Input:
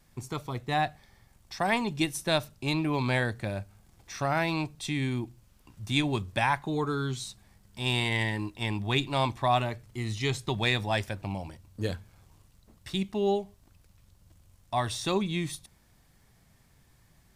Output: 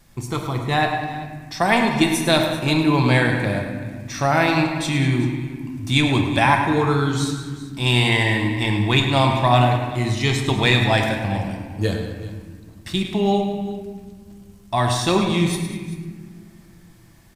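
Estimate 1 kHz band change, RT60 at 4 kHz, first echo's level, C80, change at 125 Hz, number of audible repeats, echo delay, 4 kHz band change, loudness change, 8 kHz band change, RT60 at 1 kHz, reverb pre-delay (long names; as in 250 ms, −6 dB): +10.0 dB, 1.1 s, −9.5 dB, 5.0 dB, +12.0 dB, 3, 105 ms, +10.0 dB, +10.0 dB, +9.5 dB, 1.4 s, 6 ms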